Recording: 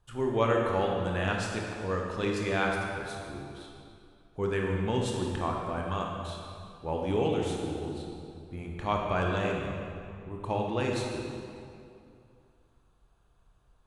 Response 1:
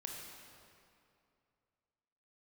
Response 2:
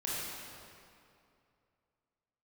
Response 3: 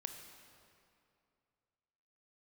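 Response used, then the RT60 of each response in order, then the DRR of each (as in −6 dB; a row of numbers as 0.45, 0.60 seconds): 1; 2.5, 2.5, 2.5 seconds; −0.5, −7.5, 5.0 decibels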